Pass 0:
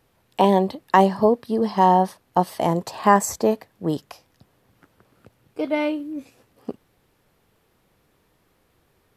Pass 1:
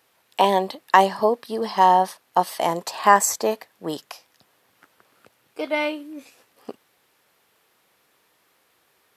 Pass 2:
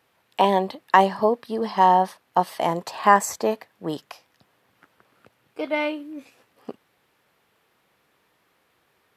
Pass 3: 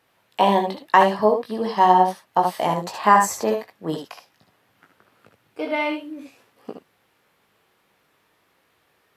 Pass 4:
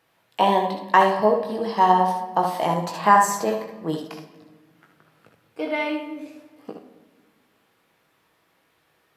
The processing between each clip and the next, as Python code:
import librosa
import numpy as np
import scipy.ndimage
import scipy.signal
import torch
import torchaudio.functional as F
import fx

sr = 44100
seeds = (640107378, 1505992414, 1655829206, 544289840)

y1 = fx.highpass(x, sr, hz=1100.0, slope=6)
y1 = y1 * librosa.db_to_amplitude(5.5)
y2 = fx.bass_treble(y1, sr, bass_db=5, treble_db=-7)
y2 = y2 * librosa.db_to_amplitude(-1.0)
y3 = fx.room_early_taps(y2, sr, ms=(19, 65, 76), db=(-6.5, -10.0, -7.0))
y4 = fx.room_shoebox(y3, sr, seeds[0], volume_m3=1200.0, walls='mixed', distance_m=0.65)
y4 = y4 * librosa.db_to_amplitude(-1.5)